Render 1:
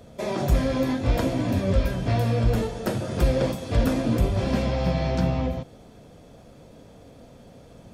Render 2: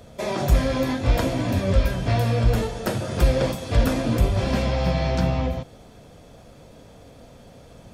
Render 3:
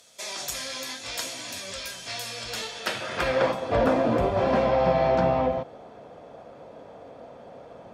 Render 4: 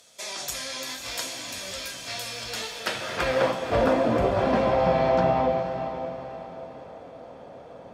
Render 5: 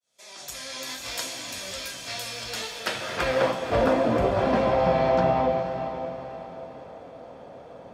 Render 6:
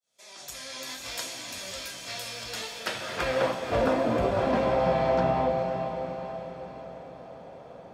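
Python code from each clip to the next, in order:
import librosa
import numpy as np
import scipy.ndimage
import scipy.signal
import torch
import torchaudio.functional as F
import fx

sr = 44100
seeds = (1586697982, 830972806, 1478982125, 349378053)

y1 = fx.peak_eq(x, sr, hz=260.0, db=-4.5, octaves=2.4)
y1 = y1 * librosa.db_to_amplitude(4.0)
y2 = fx.filter_sweep_bandpass(y1, sr, from_hz=7000.0, to_hz=740.0, start_s=2.35, end_s=3.72, q=0.97)
y2 = y2 * librosa.db_to_amplitude(7.0)
y3 = fx.echo_diffused(y2, sr, ms=514, feedback_pct=42, wet_db=-9.0)
y4 = fx.fade_in_head(y3, sr, length_s=0.94)
y5 = fx.echo_diffused(y4, sr, ms=520, feedback_pct=58, wet_db=-13)
y5 = y5 * librosa.db_to_amplitude(-3.0)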